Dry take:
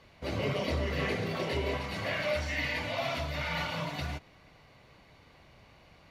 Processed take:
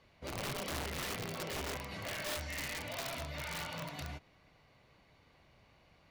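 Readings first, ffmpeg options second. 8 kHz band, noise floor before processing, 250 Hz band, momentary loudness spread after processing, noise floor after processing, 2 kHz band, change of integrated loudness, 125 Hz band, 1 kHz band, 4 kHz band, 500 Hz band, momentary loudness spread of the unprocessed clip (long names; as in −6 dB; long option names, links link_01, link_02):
+6.0 dB, −59 dBFS, −9.0 dB, 5 LU, −67 dBFS, −7.5 dB, −7.0 dB, −9.5 dB, −6.5 dB, −4.5 dB, −10.0 dB, 5 LU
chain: -af "aeval=exprs='(mod(18.8*val(0)+1,2)-1)/18.8':channel_layout=same,volume=-7.5dB"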